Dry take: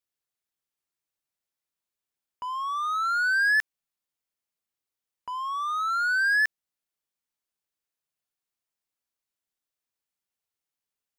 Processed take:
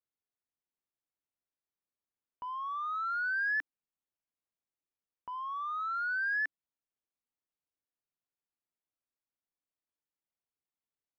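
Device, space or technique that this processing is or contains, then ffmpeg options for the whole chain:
phone in a pocket: -filter_complex "[0:a]lowpass=3.6k,equalizer=f=290:t=o:w=0.3:g=4,highshelf=f=2.2k:g=-12,asettb=1/sr,asplit=3[a][b][c];[a]atrim=end=5.364[d];[b]atrim=start=5.36:end=6.32,asetpts=PTS-STARTPTS,afade=t=in:d=0.004:c=qsin,afade=t=out:st=0.956:d=0.004:c=qsin,highpass=f=220:w=0.5412,highpass=f=220:w=1.3066[e];[c]atrim=start=6.316[f];[d][e]acrossfade=d=0.004:c1=hsin:c2=qsin[g];[g][f]acrossfade=d=0.004:c1=qsin:c2=hsin,volume=-4.5dB"

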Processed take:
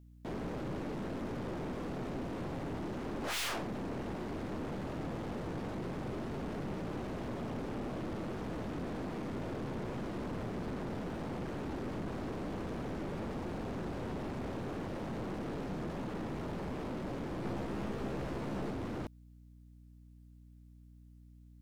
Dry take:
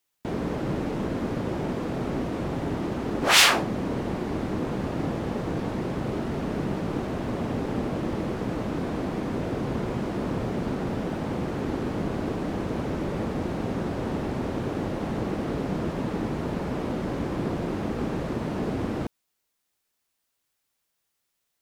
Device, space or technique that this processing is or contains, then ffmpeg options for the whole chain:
valve amplifier with mains hum: -filter_complex "[0:a]aeval=exprs='(tanh(28.2*val(0)+0.35)-tanh(0.35))/28.2':c=same,aeval=exprs='val(0)+0.00355*(sin(2*PI*60*n/s)+sin(2*PI*2*60*n/s)/2+sin(2*PI*3*60*n/s)/3+sin(2*PI*4*60*n/s)/4+sin(2*PI*5*60*n/s)/5)':c=same,asettb=1/sr,asplit=3[a][b][c];[a]atrim=end=17.424[d];[b]atrim=start=17.42:end=18.71,asetpts=PTS-STARTPTS,afade=t=in:d=0.004:c=qsin,afade=t=out:st=1.286:d=0.004:c=qsin,asplit=2[e][f];[f]adelay=15,volume=-3.5dB[g];[e][g]amix=inputs=2:normalize=0,atrim=end_sample=56889[h];[c]atrim=start=18.706[i];[d][h]acrossfade=d=0.004:c1=hsin:c2=qsin[j];[j][i]acrossfade=d=0.004:c1=qsin:c2=hsin,volume=-6dB"

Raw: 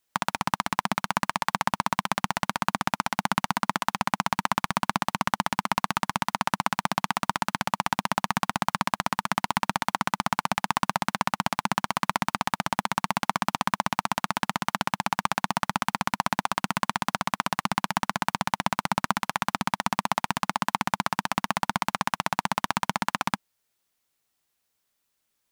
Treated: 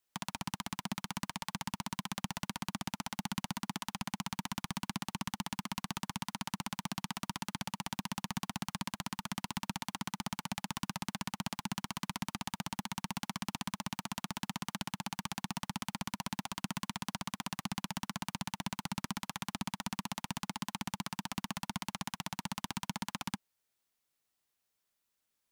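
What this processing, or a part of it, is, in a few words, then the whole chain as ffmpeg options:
one-band saturation: -filter_complex "[0:a]acrossover=split=310|2500[a][b][c];[b]asoftclip=type=tanh:threshold=-28.5dB[d];[a][d][c]amix=inputs=3:normalize=0,volume=-6.5dB"

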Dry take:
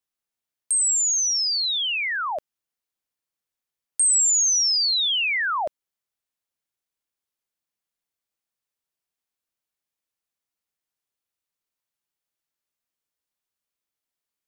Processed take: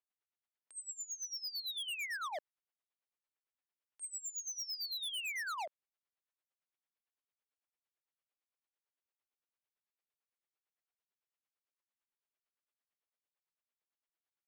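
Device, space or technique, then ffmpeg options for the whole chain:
helicopter radio: -filter_complex "[0:a]highpass=380,lowpass=2.9k,aeval=exprs='val(0)*pow(10,-19*(0.5-0.5*cos(2*PI*8.9*n/s))/20)':c=same,asoftclip=type=hard:threshold=-37dB,asettb=1/sr,asplit=3[a][b][c];[a]atrim=end=1.414[d];[b]atrim=start=1.41:end=1.88,asetpts=PTS-STARTPTS,afade=t=in:d=0.004:c=qsin,afade=t=out:st=0.466:d=0.004:c=qsin,bandreject=f=79.19:t=h:w=4,bandreject=f=158.38:t=h:w=4,bandreject=f=237.57:t=h:w=4,bandreject=f=316.76:t=h:w=4,bandreject=f=395.95:t=h:w=4,bandreject=f=475.14:t=h:w=4,bandreject=f=554.33:t=h:w=4,bandreject=f=633.52:t=h:w=4,bandreject=f=712.71:t=h:w=4,bandreject=f=791.9:t=h:w=4,bandreject=f=871.09:t=h:w=4,bandreject=f=950.28:t=h:w=4,bandreject=f=1.02947k:t=h:w=4,bandreject=f=1.10866k:t=h:w=4,bandreject=f=1.18785k:t=h:w=4,bandreject=f=1.26704k:t=h:w=4,bandreject=f=1.34623k:t=h:w=4,bandreject=f=1.42542k:t=h:w=4,bandreject=f=1.50461k:t=h:w=4,bandreject=f=1.5838k:t=h:w=4,bandreject=f=1.66299k:t=h:w=4,bandreject=f=1.74218k:t=h:w=4,bandreject=f=1.82137k:t=h:w=4,bandreject=f=1.90056k:t=h:w=4,bandreject=f=1.97975k:t=h:w=4,bandreject=f=2.05894k:t=h:w=4,bandreject=f=2.13813k:t=h:w=4,bandreject=f=2.21732k:t=h:w=4,bandreject=f=2.29651k:t=h:w=4,bandreject=f=2.3757k:t=h:w=4,bandreject=f=2.45489k:t=h:w=4,bandreject=f=2.53408k:t=h:w=4,bandreject=f=2.61327k:t=h:w=4,bandreject=f=2.69246k:t=h:w=4[e];[c]atrim=start=1.876[f];[d][e]acrossfade=d=0.004:c1=hsin:c2=qsin[g];[g][f]acrossfade=d=0.004:c1=qsin:c2=hsin,volume=-1dB"

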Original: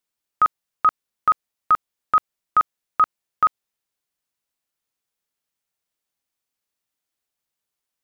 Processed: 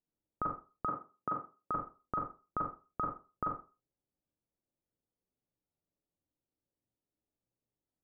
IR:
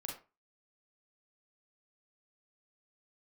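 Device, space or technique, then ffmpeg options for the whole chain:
television next door: -filter_complex "[0:a]acompressor=threshold=-16dB:ratio=6,lowpass=420[a];[1:a]atrim=start_sample=2205[b];[a][b]afir=irnorm=-1:irlink=0,asettb=1/sr,asplit=3[c][d][e];[c]atrim=end=0.864[f];[d]atrim=start=0.86:end=1.71,asetpts=PTS-STARTPTS,afade=t=in:d=0.004:c=qsin,afade=t=out:st=0.846:d=0.004:c=qsin,highpass=130[g];[e]atrim=start=1.706[h];[f][g]acrossfade=d=0.004:c1=hsin:c2=qsin[i];[i][h]acrossfade=d=0.004:c1=qsin:c2=hsin,volume=6.5dB"

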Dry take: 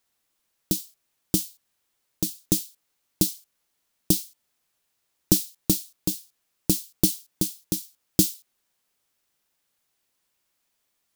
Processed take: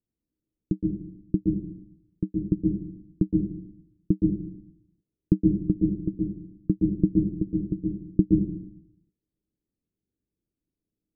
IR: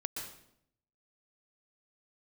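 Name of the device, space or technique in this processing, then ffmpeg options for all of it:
next room: -filter_complex "[0:a]lowpass=f=350:w=0.5412,lowpass=f=350:w=1.3066[a];[1:a]atrim=start_sample=2205[b];[a][b]afir=irnorm=-1:irlink=0,volume=3.5dB"

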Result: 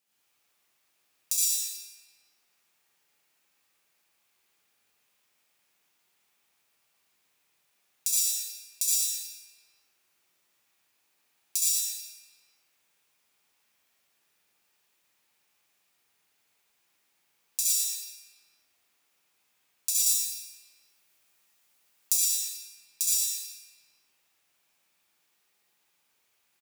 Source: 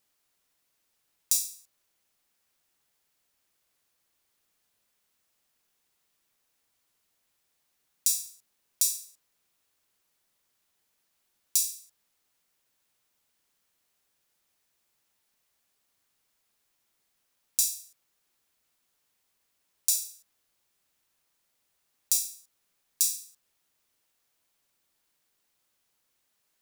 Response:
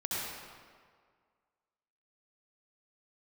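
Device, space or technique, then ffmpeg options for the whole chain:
PA in a hall: -filter_complex "[0:a]highpass=f=190:p=1,equalizer=f=2.5k:t=o:w=0.43:g=4.5,aecho=1:1:112:0.562[a];[1:a]atrim=start_sample=2205[b];[a][b]afir=irnorm=-1:irlink=0,asettb=1/sr,asplit=3[c][d][e];[c]atrim=end=20.064[f];[d]atrim=start=20.06:end=22.18,asetpts=PTS-STARTPTS,afade=t=in:d=0.004:c=qsin,afade=t=out:st=2.116:d=0.004:c=qsin,highshelf=f=5.2k:g=5.5[g];[e]atrim=start=22.176[h];[f][g]acrossfade=d=0.004:c1=hsin:c2=qsin[i];[i][h]acrossfade=d=0.004:c1=qsin:c2=hsin,bandreject=f=64.71:t=h:w=4,bandreject=f=129.42:t=h:w=4,bandreject=f=194.13:t=h:w=4,bandreject=f=258.84:t=h:w=4,bandreject=f=323.55:t=h:w=4,bandreject=f=388.26:t=h:w=4,bandreject=f=452.97:t=h:w=4,bandreject=f=517.68:t=h:w=4,bandreject=f=582.39:t=h:w=4,bandreject=f=647.1:t=h:w=4,bandreject=f=711.81:t=h:w=4,bandreject=f=776.52:t=h:w=4,bandreject=f=841.23:t=h:w=4,bandreject=f=905.94:t=h:w=4,bandreject=f=970.65:t=h:w=4,bandreject=f=1.03536k:t=h:w=4,bandreject=f=1.10007k:t=h:w=4,bandreject=f=1.16478k:t=h:w=4,bandreject=f=1.22949k:t=h:w=4,bandreject=f=1.2942k:t=h:w=4,bandreject=f=1.35891k:t=h:w=4,bandreject=f=1.42362k:t=h:w=4,bandreject=f=1.48833k:t=h:w=4,bandreject=f=1.55304k:t=h:w=4,bandreject=f=1.61775k:t=h:w=4,bandreject=f=1.68246k:t=h:w=4,bandreject=f=1.74717k:t=h:w=4,bandreject=f=1.81188k:t=h:w=4,bandreject=f=1.87659k:t=h:w=4,bandreject=f=1.9413k:t=h:w=4,bandreject=f=2.00601k:t=h:w=4,bandreject=f=2.07072k:t=h:w=4,bandreject=f=2.13543k:t=h:w=4,bandreject=f=2.20014k:t=h:w=4,bandreject=f=2.26485k:t=h:w=4,bandreject=f=2.32956k:t=h:w=4,bandreject=f=2.39427k:t=h:w=4,bandreject=f=2.45898k:t=h:w=4,bandreject=f=2.52369k:t=h:w=4,volume=-2dB"

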